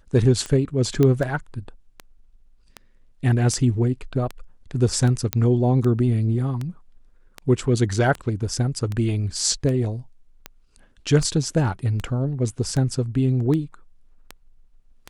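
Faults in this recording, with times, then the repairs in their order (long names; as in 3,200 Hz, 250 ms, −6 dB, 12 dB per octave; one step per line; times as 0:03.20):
scratch tick 78 rpm −16 dBFS
0:01.03: click −9 dBFS
0:05.33: click −5 dBFS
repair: click removal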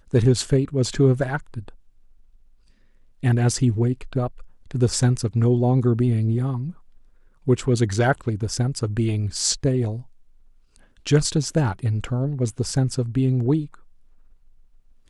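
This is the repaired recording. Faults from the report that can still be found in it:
none of them is left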